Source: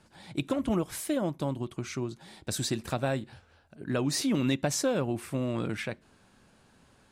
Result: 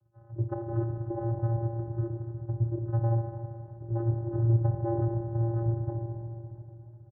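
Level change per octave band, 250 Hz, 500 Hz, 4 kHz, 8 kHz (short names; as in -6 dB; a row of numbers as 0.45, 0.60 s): -5.0 dB, -3.5 dB, under -40 dB, under -40 dB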